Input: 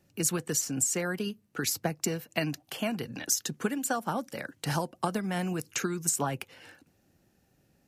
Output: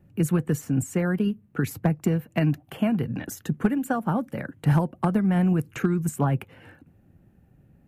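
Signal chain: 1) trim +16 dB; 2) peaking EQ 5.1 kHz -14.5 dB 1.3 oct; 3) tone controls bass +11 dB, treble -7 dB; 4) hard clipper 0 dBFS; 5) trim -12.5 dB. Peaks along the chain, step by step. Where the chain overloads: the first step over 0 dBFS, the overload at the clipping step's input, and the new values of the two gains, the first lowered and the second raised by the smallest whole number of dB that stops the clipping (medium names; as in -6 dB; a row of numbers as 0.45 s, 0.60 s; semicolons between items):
+4.0 dBFS, +3.0 dBFS, +5.0 dBFS, 0.0 dBFS, -12.5 dBFS; step 1, 5.0 dB; step 1 +11 dB, step 5 -7.5 dB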